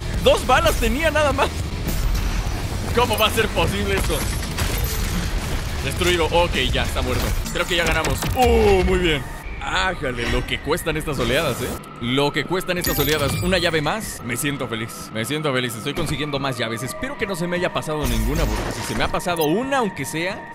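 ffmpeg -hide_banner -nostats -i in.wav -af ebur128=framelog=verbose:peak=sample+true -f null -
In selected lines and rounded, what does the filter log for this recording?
Integrated loudness:
  I:         -21.2 LUFS
  Threshold: -31.2 LUFS
Loudness range:
  LRA:         4.0 LU
  Threshold: -41.4 LUFS
  LRA low:   -23.7 LUFS
  LRA high:  -19.7 LUFS
Sample peak:
  Peak:       -2.4 dBFS
True peak:
  Peak:       -2.4 dBFS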